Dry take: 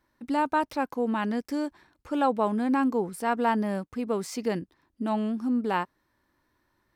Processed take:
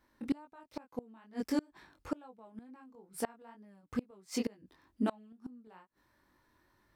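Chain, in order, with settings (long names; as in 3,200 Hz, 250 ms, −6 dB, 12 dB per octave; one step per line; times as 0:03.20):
chorus effect 2.2 Hz, delay 19.5 ms, depth 3.4 ms
gate with flip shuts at −25 dBFS, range −31 dB
level +4 dB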